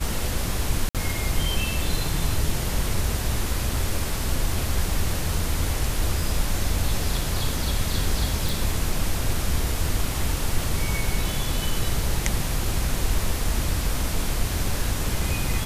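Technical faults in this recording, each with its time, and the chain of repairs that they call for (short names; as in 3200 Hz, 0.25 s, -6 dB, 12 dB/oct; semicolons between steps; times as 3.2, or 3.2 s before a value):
0.89–0.95 gap 57 ms
8.49 pop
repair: de-click; interpolate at 0.89, 57 ms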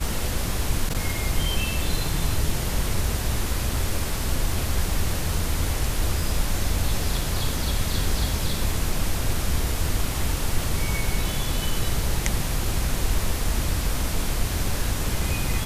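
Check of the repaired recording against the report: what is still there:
none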